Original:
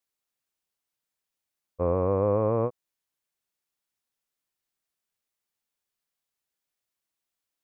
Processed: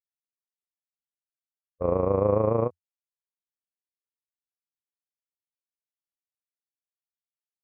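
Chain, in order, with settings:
downward expander −21 dBFS
amplitude modulation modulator 27 Hz, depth 50%
parametric band 87 Hz −5.5 dB 0.22 octaves
in parallel at −3 dB: brickwall limiter −22.5 dBFS, peak gain reduction 8 dB
on the sum: low-pass that shuts in the quiet parts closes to 940 Hz, open at −25.5 dBFS
level +3 dB

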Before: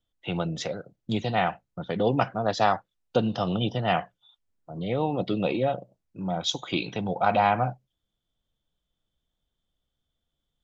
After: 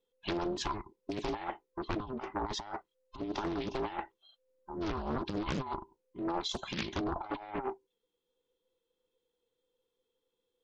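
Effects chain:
frequency inversion band by band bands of 500 Hz
compressor whose output falls as the input rises −28 dBFS, ratio −0.5
highs frequency-modulated by the lows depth 0.91 ms
level −6.5 dB

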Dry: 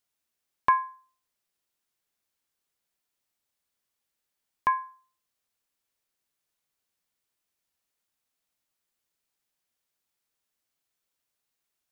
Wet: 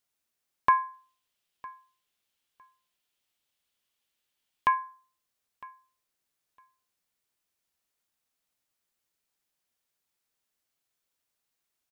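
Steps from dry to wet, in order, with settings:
0:00.93–0:04.75: parametric band 3,100 Hz +8 dB 0.81 octaves
repeating echo 957 ms, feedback 17%, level −22 dB

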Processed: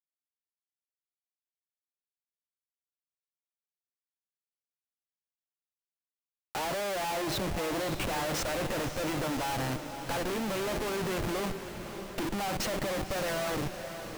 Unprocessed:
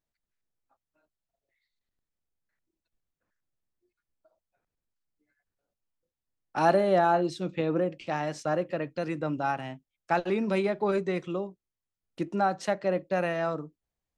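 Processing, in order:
low-shelf EQ 170 Hz −7 dB
comparator with hysteresis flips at −47 dBFS
feedback delay with all-pass diffusion 570 ms, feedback 61%, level −9.5 dB

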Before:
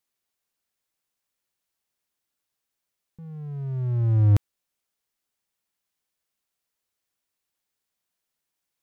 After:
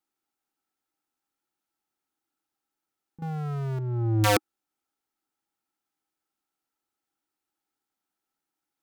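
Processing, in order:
0:03.22–0:03.79: power curve on the samples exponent 0.35
hollow resonant body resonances 310/810/1,300 Hz, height 15 dB, ringing for 30 ms
wrap-around overflow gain 9 dB
level −6 dB

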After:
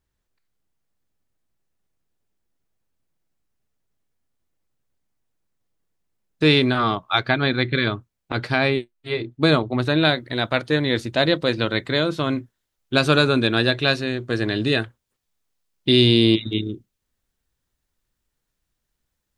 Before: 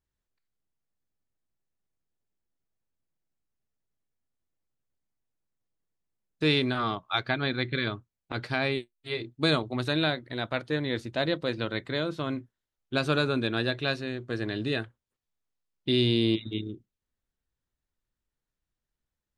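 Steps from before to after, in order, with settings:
high-shelf EQ 3,300 Hz −2 dB, from 0:08.70 −8.5 dB, from 0:10.05 +3.5 dB
level +8.5 dB

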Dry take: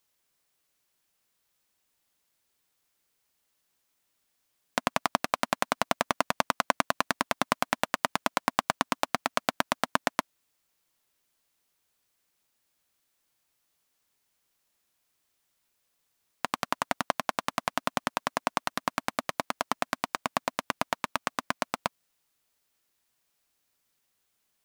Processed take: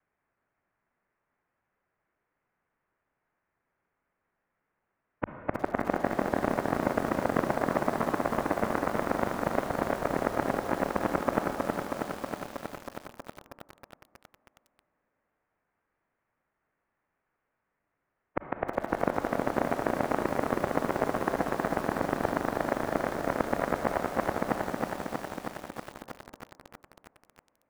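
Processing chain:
reversed piece by piece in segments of 160 ms
mains-hum notches 60/120/180/240/300/360/420 Hz
brickwall limiter −10 dBFS, peak gain reduction 7.5 dB
single-sideband voice off tune −370 Hz 360–2,600 Hz
on a send at −5 dB: convolution reverb RT60 4.1 s, pre-delay 28 ms
on the sum: speed change −11%
feedback echo at a low word length 319 ms, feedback 80%, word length 8 bits, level −3.5 dB
level +3 dB

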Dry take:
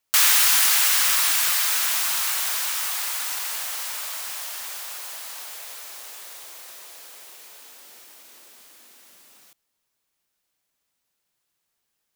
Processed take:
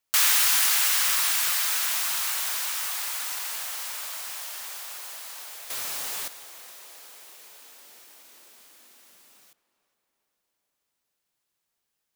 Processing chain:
0:05.70–0:06.28: leveller curve on the samples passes 5
on a send: tape delay 414 ms, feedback 64%, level −17 dB, low-pass 2,500 Hz
on the sum: level −3.5 dB

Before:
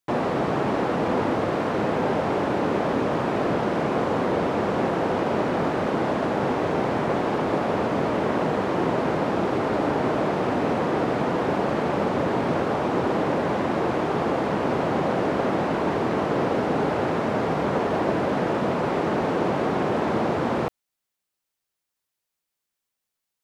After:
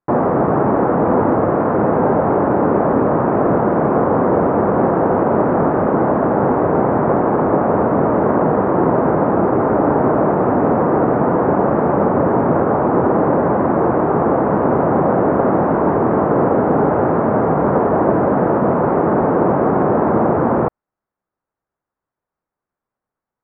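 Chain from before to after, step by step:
low-pass filter 1,400 Hz 24 dB per octave
level +9 dB

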